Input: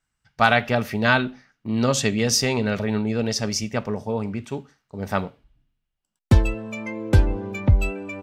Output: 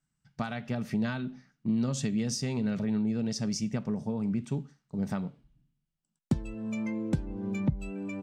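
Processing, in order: compressor 6:1, threshold -26 dBFS, peak gain reduction 15.5 dB; EQ curve 100 Hz 0 dB, 150 Hz +14 dB, 470 Hz -1 dB, 2600 Hz -3 dB, 8600 Hz +3 dB, 13000 Hz -8 dB; gain -6.5 dB

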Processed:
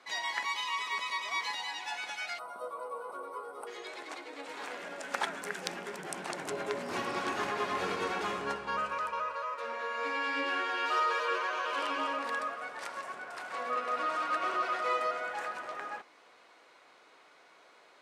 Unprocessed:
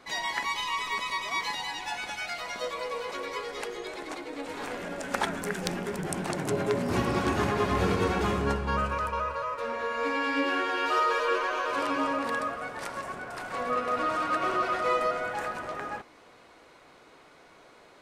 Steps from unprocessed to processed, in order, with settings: weighting filter A; 2.39–3.67 spectral gain 1500–8000 Hz -22 dB; 11.64–12.19 bell 3000 Hz +6.5 dB 0.24 oct; gain -4 dB

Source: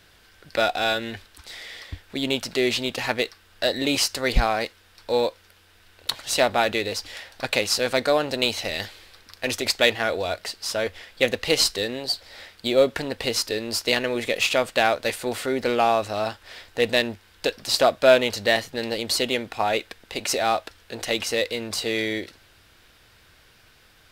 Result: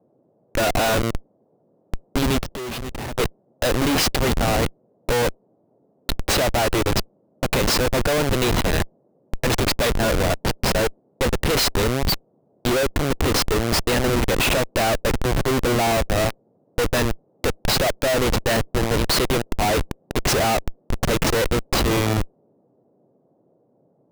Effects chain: Schmitt trigger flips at -25 dBFS; 2.43–3.15 level quantiser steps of 18 dB; band noise 120–630 Hz -68 dBFS; gain +6.5 dB

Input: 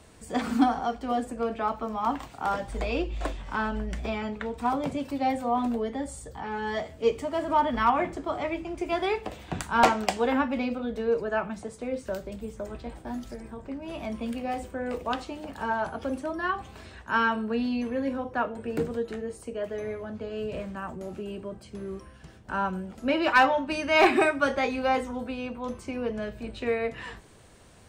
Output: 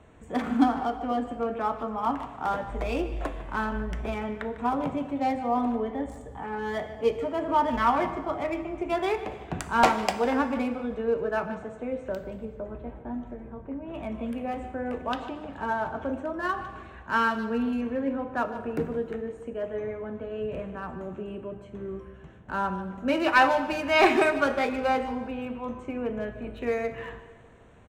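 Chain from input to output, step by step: Wiener smoothing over 9 samples; 12.45–13.94 LPF 1500 Hz 6 dB/oct; speakerphone echo 0.15 s, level -13 dB; plate-style reverb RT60 1.6 s, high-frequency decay 0.9×, DRR 10.5 dB

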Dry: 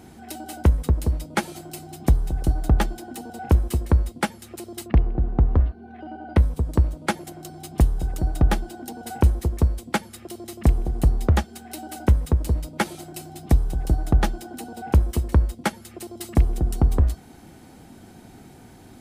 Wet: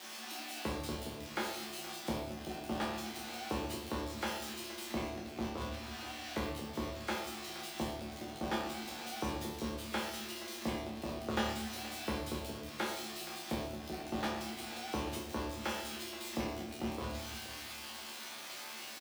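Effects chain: switching spikes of -14 dBFS; gate -16 dBFS, range -9 dB; HPF 78 Hz; three-band isolator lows -24 dB, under 240 Hz, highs -19 dB, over 4800 Hz; resonator bank D2 fifth, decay 0.47 s; on a send: echo 0.473 s -16 dB; on the sum: shoebox room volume 220 m³, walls mixed, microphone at 0.94 m; gain +10 dB

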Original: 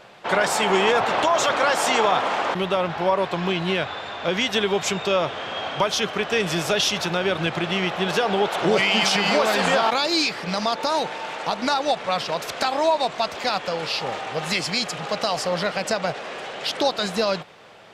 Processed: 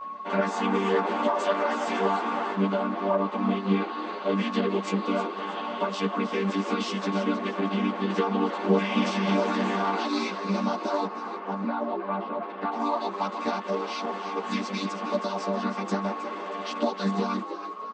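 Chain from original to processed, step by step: chord vocoder minor triad, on G3; in parallel at 0 dB: compressor, threshold -29 dBFS, peak gain reduction 14 dB; on the sum: whine 1100 Hz -29 dBFS; 11.06–12.72 air absorption 480 m; on a send: frequency-shifting echo 0.316 s, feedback 36%, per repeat +110 Hz, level -11 dB; on the sum: ensemble effect; gain -4 dB

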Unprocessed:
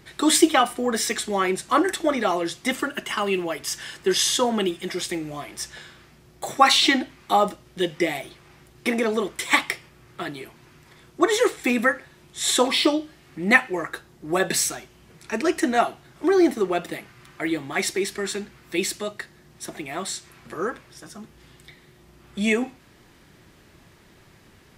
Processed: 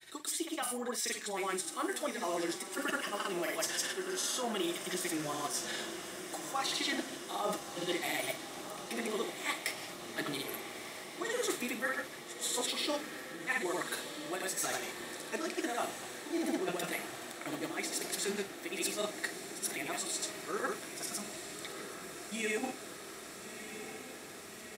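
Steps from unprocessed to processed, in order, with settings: HPF 280 Hz 6 dB/oct; high shelf 5800 Hz +12 dB; reverse; compressor 16:1, threshold -31 dBFS, peak gain reduction 23 dB; reverse; grains, pitch spread up and down by 0 st; doubler 46 ms -11.5 dB; on a send: diffused feedback echo 1.307 s, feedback 74%, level -10 dB

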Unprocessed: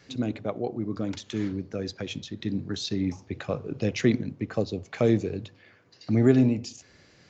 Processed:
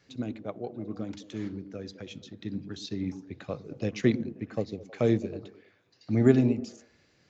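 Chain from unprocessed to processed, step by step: delay with a stepping band-pass 0.106 s, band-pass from 240 Hz, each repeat 0.7 oct, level -8 dB; upward expander 1.5:1, over -33 dBFS

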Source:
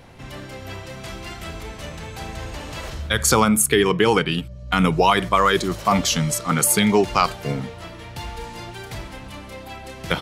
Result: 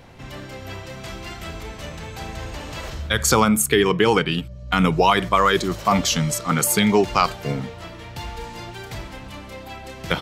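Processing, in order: bell 9900 Hz -7 dB 0.22 oct

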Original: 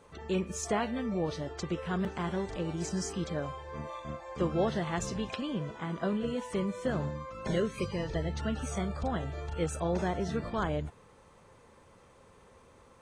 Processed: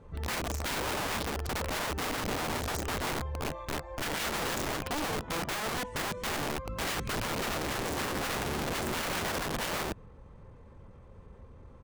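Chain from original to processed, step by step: RIAA curve playback; wrapped overs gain 26.5 dB; tempo 1.1×; gain -1.5 dB

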